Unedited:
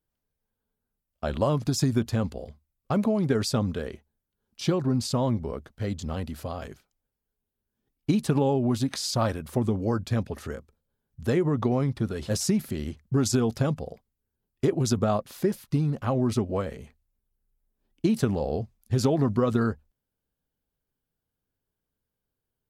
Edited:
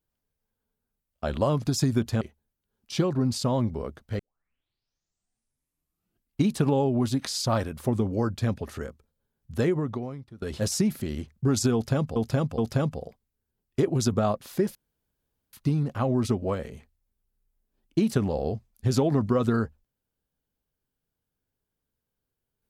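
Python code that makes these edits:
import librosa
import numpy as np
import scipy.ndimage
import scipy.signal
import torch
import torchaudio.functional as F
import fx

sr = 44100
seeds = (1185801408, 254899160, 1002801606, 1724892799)

y = fx.edit(x, sr, fx.cut(start_s=2.21, length_s=1.69),
    fx.tape_start(start_s=5.88, length_s=2.3),
    fx.fade_out_to(start_s=11.36, length_s=0.75, curve='qua', floor_db=-19.5),
    fx.repeat(start_s=13.43, length_s=0.42, count=3),
    fx.insert_room_tone(at_s=15.6, length_s=0.78), tone=tone)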